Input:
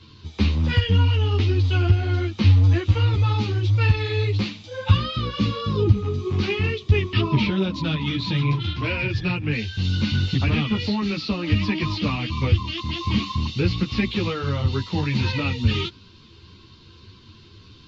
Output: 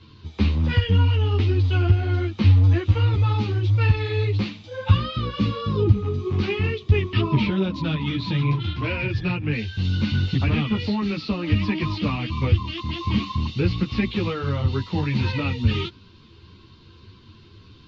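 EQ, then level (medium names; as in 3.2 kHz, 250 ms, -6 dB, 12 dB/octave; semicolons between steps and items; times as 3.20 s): low-pass 3 kHz 6 dB/octave; 0.0 dB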